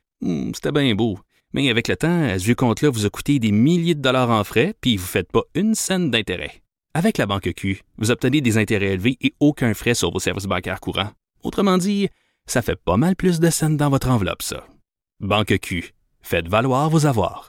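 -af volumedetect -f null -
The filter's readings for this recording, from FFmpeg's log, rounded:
mean_volume: -20.1 dB
max_volume: -4.9 dB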